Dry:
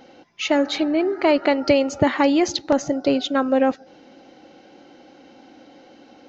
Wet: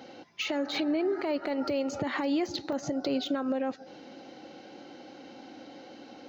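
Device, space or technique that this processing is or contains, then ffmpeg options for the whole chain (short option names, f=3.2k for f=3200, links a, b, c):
broadcast voice chain: -af "highpass=f=75:w=0.5412,highpass=f=75:w=1.3066,deesser=0.85,acompressor=threshold=-21dB:ratio=4,equalizer=f=4.3k:t=o:w=0.33:g=3.5,alimiter=limit=-21dB:level=0:latency=1:release=134"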